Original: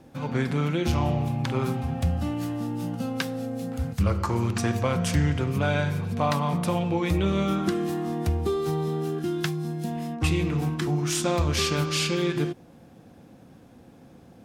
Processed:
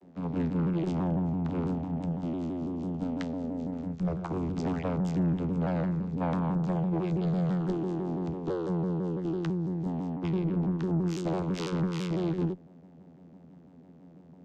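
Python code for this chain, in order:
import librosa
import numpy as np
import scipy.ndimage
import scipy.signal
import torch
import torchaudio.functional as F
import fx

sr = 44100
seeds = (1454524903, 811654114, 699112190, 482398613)

y = fx.spec_paint(x, sr, seeds[0], shape='rise', start_s=4.54, length_s=0.29, low_hz=220.0, high_hz=3000.0, level_db=-34.0)
y = fx.lowpass(y, sr, hz=4100.0, slope=12, at=(10.09, 10.7))
y = fx.vocoder(y, sr, bands=16, carrier='saw', carrier_hz=86.9)
y = fx.tube_stage(y, sr, drive_db=22.0, bias=0.4)
y = fx.vibrato_shape(y, sr, shape='saw_down', rate_hz=6.0, depth_cents=160.0)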